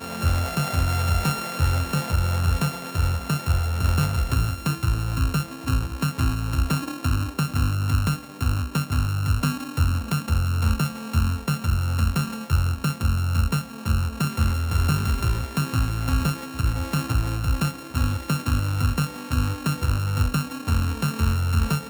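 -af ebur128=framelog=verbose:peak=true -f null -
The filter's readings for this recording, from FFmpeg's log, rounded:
Integrated loudness:
  I:         -24.5 LUFS
  Threshold: -34.5 LUFS
Loudness range:
  LRA:         1.2 LU
  Threshold: -44.6 LUFS
  LRA low:   -25.2 LUFS
  LRA high:  -24.0 LUFS
True peak:
  Peak:      -10.6 dBFS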